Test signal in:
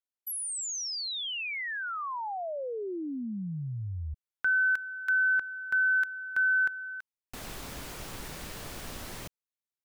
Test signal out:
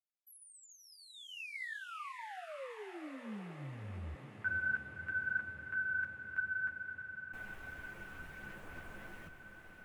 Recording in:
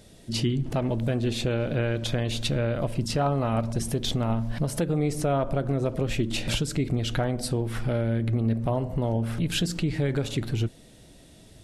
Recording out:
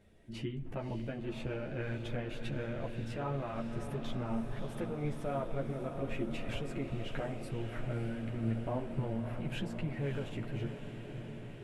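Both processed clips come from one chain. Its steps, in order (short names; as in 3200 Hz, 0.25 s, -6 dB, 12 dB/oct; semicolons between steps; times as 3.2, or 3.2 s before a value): resonant high shelf 3200 Hz -10.5 dB, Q 1.5; chorus voices 6, 0.95 Hz, delay 12 ms, depth 3 ms; diffused feedback echo 0.592 s, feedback 73%, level -8.5 dB; gain -9 dB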